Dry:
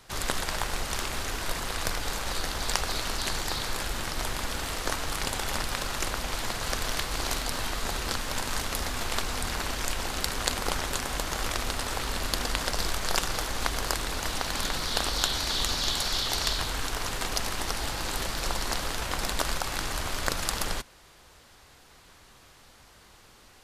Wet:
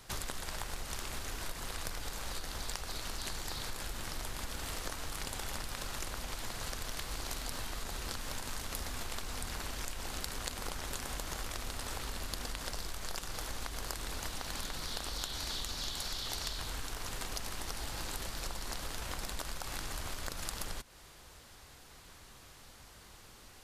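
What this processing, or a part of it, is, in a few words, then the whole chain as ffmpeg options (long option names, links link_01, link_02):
ASMR close-microphone chain: -af "lowshelf=frequency=210:gain=4,acompressor=threshold=-34dB:ratio=6,highshelf=frequency=6100:gain=5,volume=-2.5dB"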